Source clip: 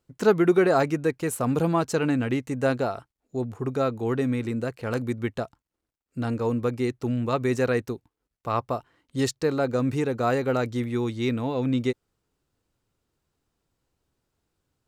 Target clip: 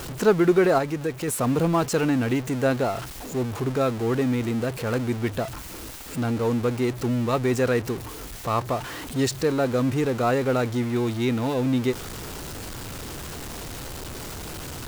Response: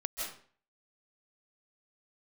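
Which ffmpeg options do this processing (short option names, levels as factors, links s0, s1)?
-filter_complex "[0:a]aeval=exprs='val(0)+0.5*0.0355*sgn(val(0))':c=same,asettb=1/sr,asplit=3[s0][s1][s2];[s0]atrim=end=0.784[s3];[s1]atrim=start=0.78:end=1.28,asetpts=PTS-STARTPTS,afade=t=in:d=0.004:c=qsin,afade=t=out:st=0.496:d=0.004:c=qsin,acompressor=threshold=0.0282:ratio=1.5[s4];[s2]atrim=start=1.276[s5];[s3][s4]acrossfade=d=0.004:c1=hsin:c2=qsin[s6];[s6][s5]acrossfade=d=0.004:c1=qsin:c2=hsin"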